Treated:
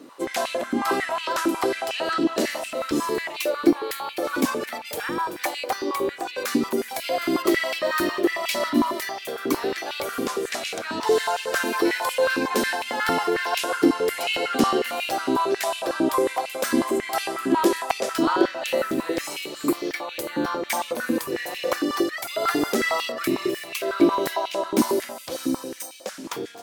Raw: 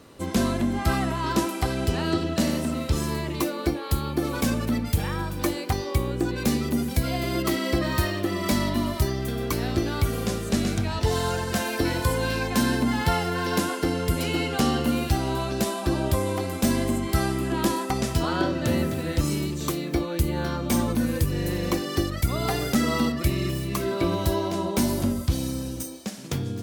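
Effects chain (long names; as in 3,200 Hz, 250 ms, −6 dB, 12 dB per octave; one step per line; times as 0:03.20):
healed spectral selection 0:19.51–0:19.89, 2,700–6,800 Hz
high-pass on a step sequencer 11 Hz 290–2,600 Hz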